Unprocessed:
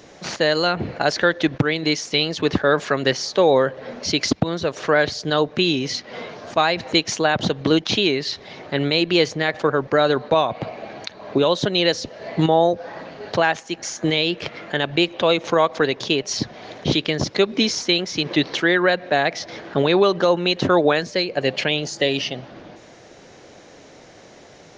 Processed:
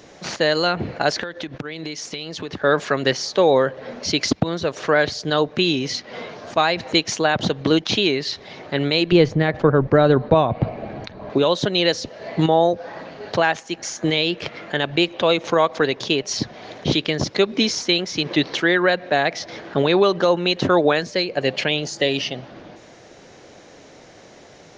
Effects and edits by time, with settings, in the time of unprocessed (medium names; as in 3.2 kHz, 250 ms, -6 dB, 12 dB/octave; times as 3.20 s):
1.23–2.62 s: compression 8:1, threshold -26 dBFS
9.12–11.30 s: RIAA curve playback